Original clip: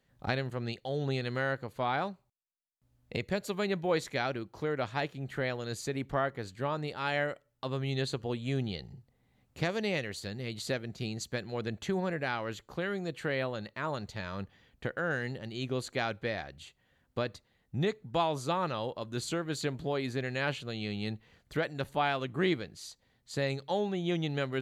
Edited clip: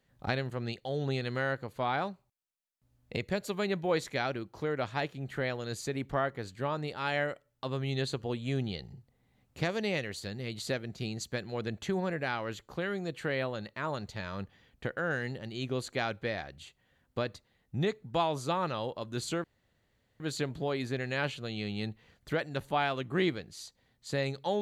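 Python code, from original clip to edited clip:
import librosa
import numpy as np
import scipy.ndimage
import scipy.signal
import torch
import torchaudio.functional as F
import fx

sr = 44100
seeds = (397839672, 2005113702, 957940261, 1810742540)

y = fx.edit(x, sr, fx.insert_room_tone(at_s=19.44, length_s=0.76), tone=tone)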